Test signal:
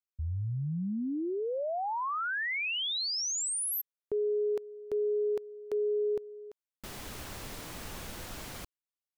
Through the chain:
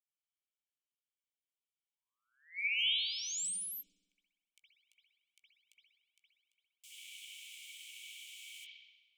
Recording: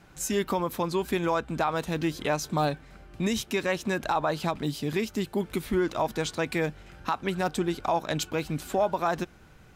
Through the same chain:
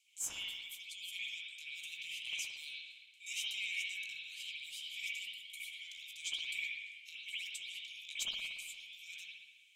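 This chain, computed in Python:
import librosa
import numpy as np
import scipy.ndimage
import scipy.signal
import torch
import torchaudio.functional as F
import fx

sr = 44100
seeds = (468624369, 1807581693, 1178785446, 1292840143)

y = scipy.signal.sosfilt(scipy.signal.cheby1(6, 9, 2200.0, 'highpass', fs=sr, output='sos'), x)
y = fx.doubler(y, sr, ms=17.0, db=-12)
y = fx.echo_bbd(y, sr, ms=231, stages=4096, feedback_pct=35, wet_db=-17.5)
y = fx.cheby_harmonics(y, sr, harmonics=(2, 3, 5, 8), levels_db=(-18, -24, -35, -37), full_scale_db=-21.0)
y = fx.rev_spring(y, sr, rt60_s=1.1, pass_ms=(57,), chirp_ms=65, drr_db=-9.5)
y = F.gain(torch.from_numpy(y), -3.5).numpy()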